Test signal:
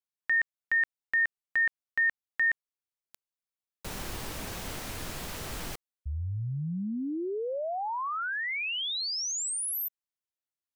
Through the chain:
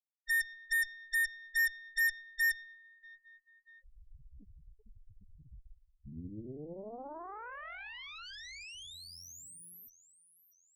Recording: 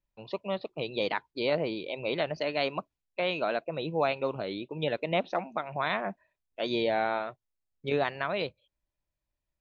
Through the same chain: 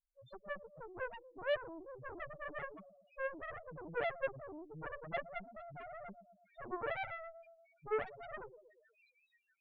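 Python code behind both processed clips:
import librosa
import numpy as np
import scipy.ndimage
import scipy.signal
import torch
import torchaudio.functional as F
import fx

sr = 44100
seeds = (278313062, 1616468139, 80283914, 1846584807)

y = fx.echo_split(x, sr, split_hz=2000.0, low_ms=118, high_ms=640, feedback_pct=52, wet_db=-14.5)
y = fx.spec_topn(y, sr, count=1)
y = fx.cheby_harmonics(y, sr, harmonics=(3, 4, 7, 8), levels_db=(-19, -23, -14, -25), full_scale_db=-24.5)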